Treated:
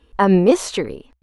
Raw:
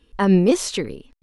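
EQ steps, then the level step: bell 63 Hz +11 dB 0.42 oct; bell 830 Hz +9 dB 2.3 oct; notch 5200 Hz, Q 18; -1.5 dB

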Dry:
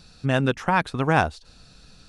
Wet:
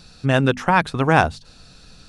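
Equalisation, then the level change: notches 50/100/150/200/250 Hz; +4.5 dB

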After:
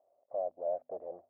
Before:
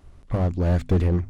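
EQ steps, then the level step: Butterworth band-pass 630 Hz, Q 3.6; air absorption 400 m; 0.0 dB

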